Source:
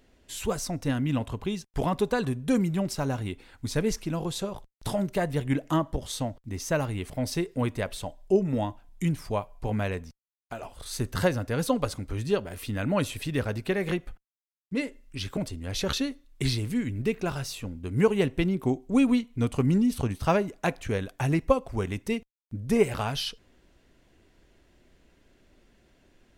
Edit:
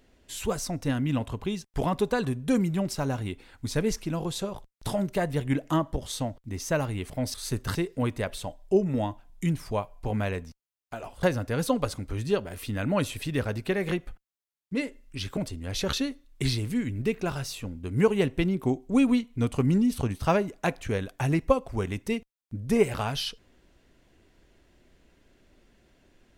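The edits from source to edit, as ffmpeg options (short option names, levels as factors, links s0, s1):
-filter_complex "[0:a]asplit=4[s0][s1][s2][s3];[s0]atrim=end=7.342[s4];[s1]atrim=start=10.818:end=11.232[s5];[s2]atrim=start=7.338:end=10.822[s6];[s3]atrim=start=11.228[s7];[s4][s5]acrossfade=d=0.004:c1=hsin:c2=hsin[s8];[s8][s6]acrossfade=d=0.004:c1=hsin:c2=hsin[s9];[s9][s7]acrossfade=d=0.004:c1=hsin:c2=hsin"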